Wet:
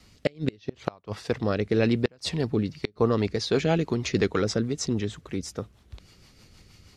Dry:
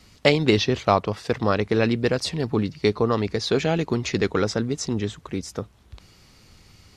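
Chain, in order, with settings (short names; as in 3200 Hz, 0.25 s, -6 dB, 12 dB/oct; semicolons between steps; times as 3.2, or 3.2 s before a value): rotary speaker horn 0.8 Hz, later 6.3 Hz, at 2.36; flipped gate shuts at -10 dBFS, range -32 dB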